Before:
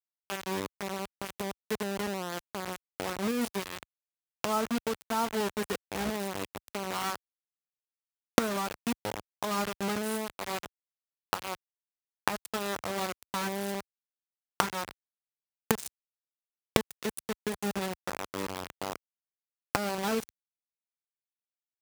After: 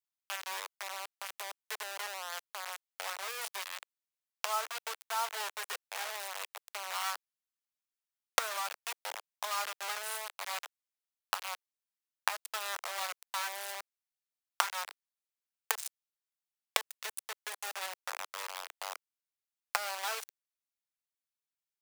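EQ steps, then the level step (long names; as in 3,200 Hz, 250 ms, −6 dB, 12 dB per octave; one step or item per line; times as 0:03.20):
Bessel high-pass filter 1,000 Hz, order 8
0.0 dB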